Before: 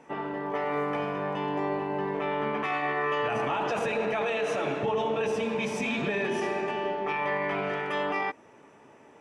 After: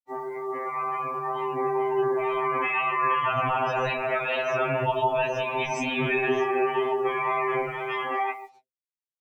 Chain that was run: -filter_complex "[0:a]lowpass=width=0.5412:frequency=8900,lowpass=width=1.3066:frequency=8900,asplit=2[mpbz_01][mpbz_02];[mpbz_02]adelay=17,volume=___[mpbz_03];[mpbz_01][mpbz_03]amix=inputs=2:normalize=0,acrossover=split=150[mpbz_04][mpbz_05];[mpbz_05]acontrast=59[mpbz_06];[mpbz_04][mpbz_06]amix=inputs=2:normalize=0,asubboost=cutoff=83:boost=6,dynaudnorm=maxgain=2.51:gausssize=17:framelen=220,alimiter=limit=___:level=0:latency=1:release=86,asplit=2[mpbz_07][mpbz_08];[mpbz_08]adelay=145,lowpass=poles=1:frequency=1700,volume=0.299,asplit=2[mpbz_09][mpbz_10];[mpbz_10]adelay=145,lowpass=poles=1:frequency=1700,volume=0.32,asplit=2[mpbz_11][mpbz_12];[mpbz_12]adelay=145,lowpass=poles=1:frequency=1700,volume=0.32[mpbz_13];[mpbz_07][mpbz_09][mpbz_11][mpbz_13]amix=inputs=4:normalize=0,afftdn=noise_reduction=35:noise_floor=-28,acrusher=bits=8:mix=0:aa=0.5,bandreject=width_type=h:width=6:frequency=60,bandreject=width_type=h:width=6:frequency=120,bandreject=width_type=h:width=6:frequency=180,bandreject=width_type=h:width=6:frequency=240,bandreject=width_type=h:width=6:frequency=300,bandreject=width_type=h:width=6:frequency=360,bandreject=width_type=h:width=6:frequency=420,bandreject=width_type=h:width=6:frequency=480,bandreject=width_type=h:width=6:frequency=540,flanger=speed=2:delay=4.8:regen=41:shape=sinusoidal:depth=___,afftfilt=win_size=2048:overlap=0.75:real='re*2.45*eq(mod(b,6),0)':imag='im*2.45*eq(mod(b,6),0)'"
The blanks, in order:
0.224, 0.335, 9.4